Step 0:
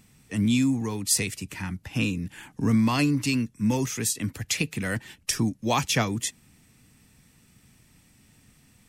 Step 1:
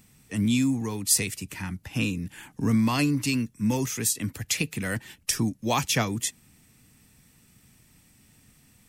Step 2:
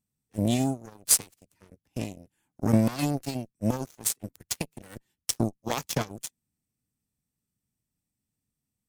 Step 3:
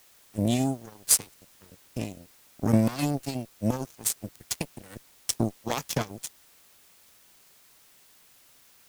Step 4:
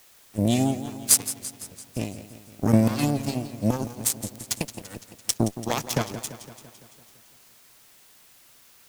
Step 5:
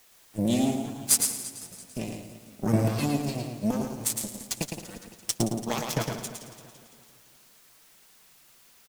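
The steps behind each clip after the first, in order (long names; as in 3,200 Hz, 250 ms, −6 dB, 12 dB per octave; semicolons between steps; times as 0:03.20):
high-shelf EQ 11,000 Hz +8 dB; level −1 dB
parametric band 2,100 Hz −8.5 dB 1.9 octaves; harmonic generator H 3 −39 dB, 5 −9 dB, 7 −8 dB, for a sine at −7 dBFS; level +1 dB
background noise white −58 dBFS
feedback echo with a swinging delay time 169 ms, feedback 62%, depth 104 cents, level −13 dB; level +3 dB
flanger 1.6 Hz, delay 3.9 ms, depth 2.9 ms, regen −32%; repeating echo 110 ms, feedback 26%, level −5 dB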